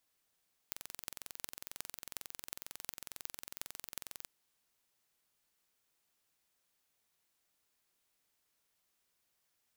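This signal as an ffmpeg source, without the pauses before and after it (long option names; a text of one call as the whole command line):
ffmpeg -f lavfi -i "aevalsrc='0.282*eq(mod(n,1995),0)*(0.5+0.5*eq(mod(n,15960),0))':duration=3.55:sample_rate=44100" out.wav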